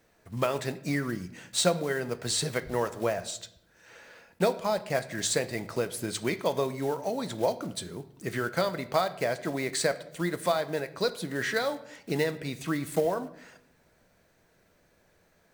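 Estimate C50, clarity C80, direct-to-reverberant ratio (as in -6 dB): 15.5 dB, 18.0 dB, 11.0 dB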